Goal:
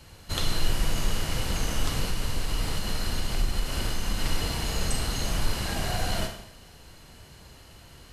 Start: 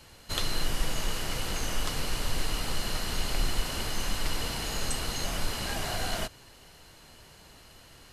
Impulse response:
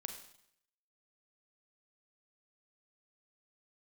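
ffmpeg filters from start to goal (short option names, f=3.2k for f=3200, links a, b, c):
-filter_complex "[1:a]atrim=start_sample=2205[a];[0:a][a]afir=irnorm=-1:irlink=0,asettb=1/sr,asplit=3[b][c][d];[b]atrim=end=2.084[e];[c]atrim=start=2.08:end=4.19,asetpts=PTS-STARTPTS,afade=t=in:d=0.004:c=qsin,afade=t=out:st=2.106:d=0.004:c=qsin,acompressor=threshold=-28dB:ratio=6[f];[d]atrim=start=4.186[g];[e][f]acrossfade=d=0.004:c1=hsin:c2=qsin[h];[h][g]acrossfade=d=0.004:c1=qsin:c2=hsin,equalizer=f=68:w=0.34:g=7,volume=3.5dB"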